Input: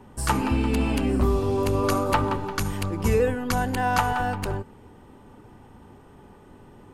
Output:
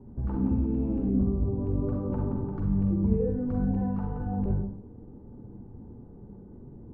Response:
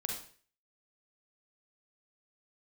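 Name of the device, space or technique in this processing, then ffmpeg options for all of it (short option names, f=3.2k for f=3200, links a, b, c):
television next door: -filter_complex "[0:a]acompressor=threshold=-26dB:ratio=4,lowpass=350[a];[1:a]atrim=start_sample=2205[b];[a][b]afir=irnorm=-1:irlink=0,volume=2.5dB"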